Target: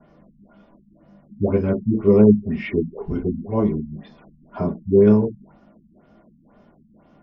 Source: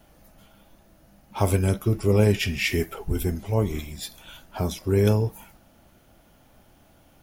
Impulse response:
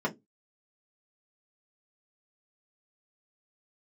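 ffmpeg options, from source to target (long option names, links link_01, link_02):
-filter_complex "[1:a]atrim=start_sample=2205,atrim=end_sample=3528[link_01];[0:a][link_01]afir=irnorm=-1:irlink=0,acrossover=split=2800[link_02][link_03];[link_03]acompressor=threshold=-52dB:ratio=4:attack=1:release=60[link_04];[link_02][link_04]amix=inputs=2:normalize=0,afftfilt=real='re*lt(b*sr/1024,250*pow(7100/250,0.5+0.5*sin(2*PI*2*pts/sr)))':imag='im*lt(b*sr/1024,250*pow(7100/250,0.5+0.5*sin(2*PI*2*pts/sr)))':win_size=1024:overlap=0.75,volume=-6.5dB"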